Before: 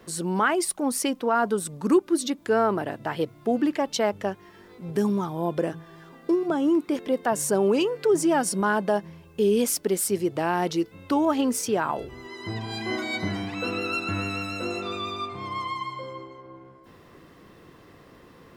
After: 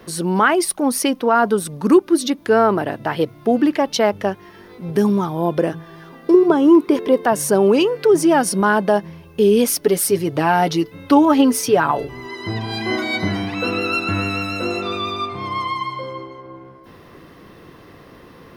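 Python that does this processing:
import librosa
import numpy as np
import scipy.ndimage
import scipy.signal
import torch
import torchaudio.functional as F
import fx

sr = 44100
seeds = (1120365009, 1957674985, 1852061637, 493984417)

y = fx.small_body(x, sr, hz=(410.0, 1000.0), ring_ms=45, db=12, at=(6.34, 7.26))
y = fx.comb(y, sr, ms=7.0, depth=0.59, at=(9.81, 12.35))
y = fx.peak_eq(y, sr, hz=7500.0, db=-11.5, octaves=0.23)
y = y * librosa.db_to_amplitude(7.5)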